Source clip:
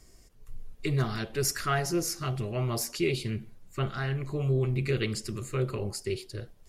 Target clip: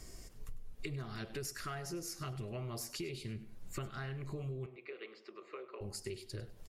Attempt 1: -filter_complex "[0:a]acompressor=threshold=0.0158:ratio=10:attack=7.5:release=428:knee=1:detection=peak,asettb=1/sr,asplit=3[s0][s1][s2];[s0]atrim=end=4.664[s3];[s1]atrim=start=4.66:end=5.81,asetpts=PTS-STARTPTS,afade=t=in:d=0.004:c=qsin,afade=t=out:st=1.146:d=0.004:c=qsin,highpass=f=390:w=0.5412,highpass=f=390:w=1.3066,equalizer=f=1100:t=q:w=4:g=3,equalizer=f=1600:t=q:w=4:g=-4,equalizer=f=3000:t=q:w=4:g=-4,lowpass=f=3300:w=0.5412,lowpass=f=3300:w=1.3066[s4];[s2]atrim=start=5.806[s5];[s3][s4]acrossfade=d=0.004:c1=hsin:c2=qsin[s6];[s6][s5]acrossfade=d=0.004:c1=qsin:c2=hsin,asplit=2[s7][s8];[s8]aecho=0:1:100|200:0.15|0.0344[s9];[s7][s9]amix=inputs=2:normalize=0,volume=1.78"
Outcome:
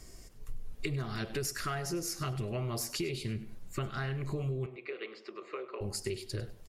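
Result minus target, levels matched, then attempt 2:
compression: peak gain reduction -6.5 dB
-filter_complex "[0:a]acompressor=threshold=0.00668:ratio=10:attack=7.5:release=428:knee=1:detection=peak,asettb=1/sr,asplit=3[s0][s1][s2];[s0]atrim=end=4.664[s3];[s1]atrim=start=4.66:end=5.81,asetpts=PTS-STARTPTS,afade=t=in:d=0.004:c=qsin,afade=t=out:st=1.146:d=0.004:c=qsin,highpass=f=390:w=0.5412,highpass=f=390:w=1.3066,equalizer=f=1100:t=q:w=4:g=3,equalizer=f=1600:t=q:w=4:g=-4,equalizer=f=3000:t=q:w=4:g=-4,lowpass=f=3300:w=0.5412,lowpass=f=3300:w=1.3066[s4];[s2]atrim=start=5.806[s5];[s3][s4]acrossfade=d=0.004:c1=hsin:c2=qsin[s6];[s6][s5]acrossfade=d=0.004:c1=qsin:c2=hsin,asplit=2[s7][s8];[s8]aecho=0:1:100|200:0.15|0.0344[s9];[s7][s9]amix=inputs=2:normalize=0,volume=1.78"

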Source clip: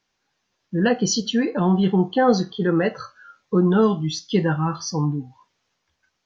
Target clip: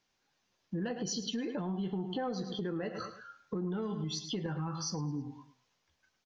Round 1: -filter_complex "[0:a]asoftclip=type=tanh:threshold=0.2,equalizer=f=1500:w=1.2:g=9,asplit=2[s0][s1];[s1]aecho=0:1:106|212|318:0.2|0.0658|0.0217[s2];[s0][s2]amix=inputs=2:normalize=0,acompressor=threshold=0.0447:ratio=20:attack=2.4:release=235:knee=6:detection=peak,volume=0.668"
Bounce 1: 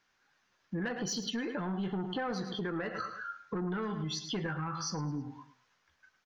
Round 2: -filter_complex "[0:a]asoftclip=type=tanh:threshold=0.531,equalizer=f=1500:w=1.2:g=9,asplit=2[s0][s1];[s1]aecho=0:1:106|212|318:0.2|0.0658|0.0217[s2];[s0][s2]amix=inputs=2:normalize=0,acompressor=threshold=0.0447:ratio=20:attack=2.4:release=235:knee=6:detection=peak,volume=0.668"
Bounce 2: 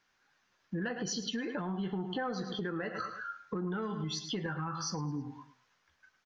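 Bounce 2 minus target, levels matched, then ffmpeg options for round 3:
2 kHz band +7.5 dB
-filter_complex "[0:a]asoftclip=type=tanh:threshold=0.531,equalizer=f=1500:w=1.2:g=-2,asplit=2[s0][s1];[s1]aecho=0:1:106|212|318:0.2|0.0658|0.0217[s2];[s0][s2]amix=inputs=2:normalize=0,acompressor=threshold=0.0447:ratio=20:attack=2.4:release=235:knee=6:detection=peak,volume=0.668"

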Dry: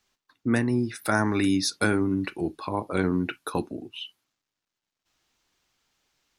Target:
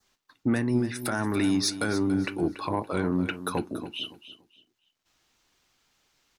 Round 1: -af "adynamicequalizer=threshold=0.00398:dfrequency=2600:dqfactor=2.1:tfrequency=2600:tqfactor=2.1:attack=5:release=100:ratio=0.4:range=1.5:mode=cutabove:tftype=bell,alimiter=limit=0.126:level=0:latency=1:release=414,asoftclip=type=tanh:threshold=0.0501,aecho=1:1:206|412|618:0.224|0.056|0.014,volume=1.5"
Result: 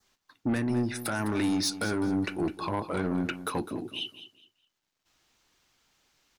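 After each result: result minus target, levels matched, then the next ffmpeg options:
saturation: distortion +10 dB; echo 78 ms early
-af "adynamicequalizer=threshold=0.00398:dfrequency=2600:dqfactor=2.1:tfrequency=2600:tqfactor=2.1:attack=5:release=100:ratio=0.4:range=1.5:mode=cutabove:tftype=bell,alimiter=limit=0.126:level=0:latency=1:release=414,asoftclip=type=tanh:threshold=0.119,aecho=1:1:206|412|618:0.224|0.056|0.014,volume=1.5"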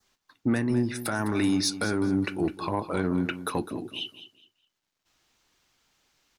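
echo 78 ms early
-af "adynamicequalizer=threshold=0.00398:dfrequency=2600:dqfactor=2.1:tfrequency=2600:tqfactor=2.1:attack=5:release=100:ratio=0.4:range=1.5:mode=cutabove:tftype=bell,alimiter=limit=0.126:level=0:latency=1:release=414,asoftclip=type=tanh:threshold=0.119,aecho=1:1:284|568|852:0.224|0.056|0.014,volume=1.5"

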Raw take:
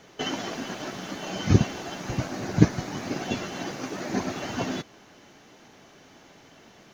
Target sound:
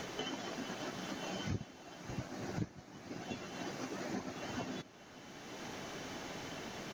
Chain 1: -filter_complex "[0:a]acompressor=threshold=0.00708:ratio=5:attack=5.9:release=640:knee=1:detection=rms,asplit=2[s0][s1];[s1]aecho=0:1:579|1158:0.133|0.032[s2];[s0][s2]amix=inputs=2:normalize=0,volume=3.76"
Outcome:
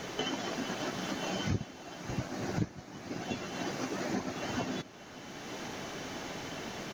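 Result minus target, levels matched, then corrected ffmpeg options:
compression: peak gain reduction -6.5 dB
-filter_complex "[0:a]acompressor=threshold=0.00282:ratio=5:attack=5.9:release=640:knee=1:detection=rms,asplit=2[s0][s1];[s1]aecho=0:1:579|1158:0.133|0.032[s2];[s0][s2]amix=inputs=2:normalize=0,volume=3.76"

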